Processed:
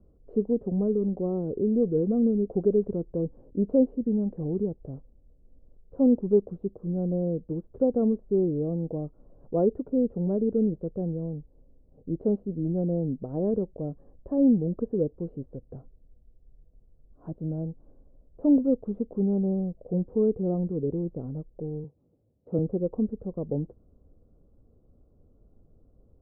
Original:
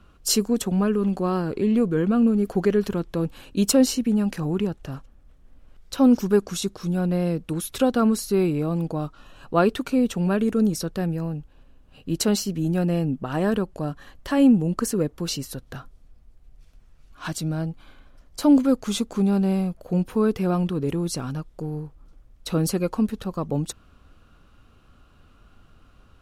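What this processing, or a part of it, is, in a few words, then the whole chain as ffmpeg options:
under water: -filter_complex "[0:a]lowpass=frequency=610:width=0.5412,lowpass=frequency=610:width=1.3066,equalizer=frequency=470:width_type=o:width=0.57:gain=5.5,asettb=1/sr,asplit=3[link_01][link_02][link_03];[link_01]atrim=end=21.844[link_04];[link_02]atrim=start=21.84:end=22.59,asetpts=PTS-STARTPTS,afade=type=in:duration=0.004:curve=qsin,afade=type=out:start_time=0.746:duration=0.004:curve=qsin,highpass=frequency=91:width=0.5412,highpass=frequency=91:width=1.3066[link_05];[link_03]atrim=start=22.586[link_06];[link_04][link_05]acrossfade=duration=0.004:curve1=hsin:curve2=qsin[link_07];[link_07][link_06]acrossfade=duration=0.004:curve1=qsin:curve2=hsin,volume=-5dB"

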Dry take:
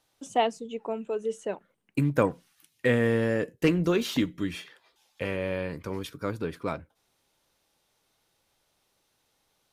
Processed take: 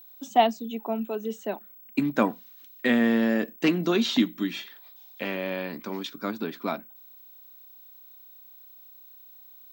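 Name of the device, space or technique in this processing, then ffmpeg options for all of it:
old television with a line whistle: -af "highpass=frequency=210:width=0.5412,highpass=frequency=210:width=1.3066,equalizer=frequency=220:width_type=q:width=4:gain=8,equalizer=frequency=490:width_type=q:width=4:gain=-9,equalizer=frequency=710:width_type=q:width=4:gain=5,equalizer=frequency=3800:width_type=q:width=4:gain=7,lowpass=frequency=7200:width=0.5412,lowpass=frequency=7200:width=1.3066,aeval=exprs='val(0)+0.00355*sin(2*PI*15734*n/s)':channel_layout=same,volume=2dB"

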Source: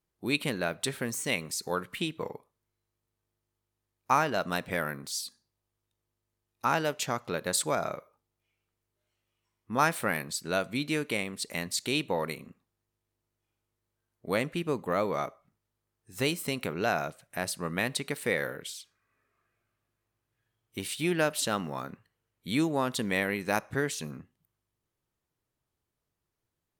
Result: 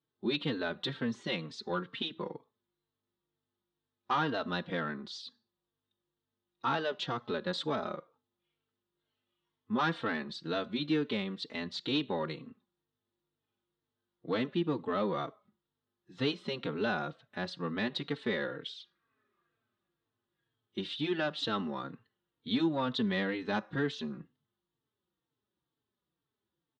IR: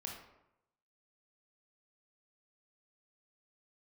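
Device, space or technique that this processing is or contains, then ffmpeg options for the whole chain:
barber-pole flanger into a guitar amplifier: -filter_complex "[0:a]asplit=2[link_01][link_02];[link_02]adelay=3.9,afreqshift=-2.1[link_03];[link_01][link_03]amix=inputs=2:normalize=1,asoftclip=type=tanh:threshold=-23.5dB,highpass=98,equalizer=frequency=100:width_type=q:width=4:gain=-6,equalizer=frequency=220:width_type=q:width=4:gain=4,equalizer=frequency=340:width_type=q:width=4:gain=4,equalizer=frequency=650:width_type=q:width=4:gain=-5,equalizer=frequency=2300:width_type=q:width=4:gain=-9,equalizer=frequency=3600:width_type=q:width=4:gain=7,lowpass=frequency=4000:width=0.5412,lowpass=frequency=4000:width=1.3066,volume=1.5dB"

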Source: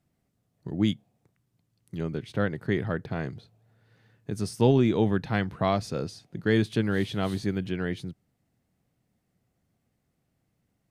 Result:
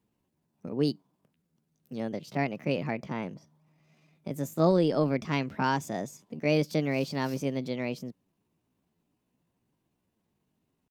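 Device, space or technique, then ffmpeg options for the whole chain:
chipmunk voice: -filter_complex "[0:a]asetrate=60591,aresample=44100,atempo=0.727827,asplit=3[link_01][link_02][link_03];[link_01]afade=type=out:start_time=3.09:duration=0.02[link_04];[link_02]adynamicequalizer=threshold=0.00282:dfrequency=2700:dqfactor=0.7:tfrequency=2700:tqfactor=0.7:attack=5:release=100:ratio=0.375:range=3:mode=cutabove:tftype=highshelf,afade=type=in:start_time=3.09:duration=0.02,afade=type=out:start_time=4.66:duration=0.02[link_05];[link_03]afade=type=in:start_time=4.66:duration=0.02[link_06];[link_04][link_05][link_06]amix=inputs=3:normalize=0,volume=-2.5dB"

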